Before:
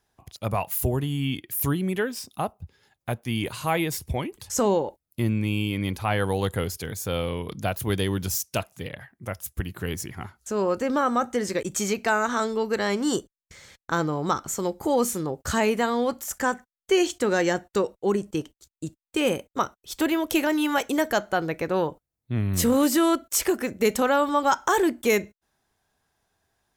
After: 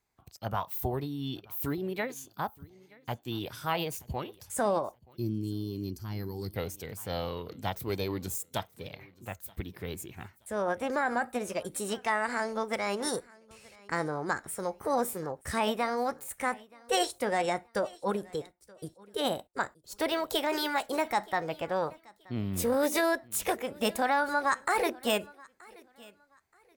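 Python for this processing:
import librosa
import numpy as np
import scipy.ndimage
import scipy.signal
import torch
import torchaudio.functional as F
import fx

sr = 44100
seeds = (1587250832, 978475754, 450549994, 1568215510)

p1 = fx.formant_shift(x, sr, semitones=4)
p2 = p1 + fx.echo_feedback(p1, sr, ms=927, feedback_pct=27, wet_db=-23, dry=0)
p3 = fx.spec_box(p2, sr, start_s=5.17, length_s=1.38, low_hz=420.0, high_hz=4100.0, gain_db=-15)
p4 = fx.dynamic_eq(p3, sr, hz=790.0, q=1.4, threshold_db=-33.0, ratio=4.0, max_db=4)
y = F.gain(torch.from_numpy(p4), -8.0).numpy()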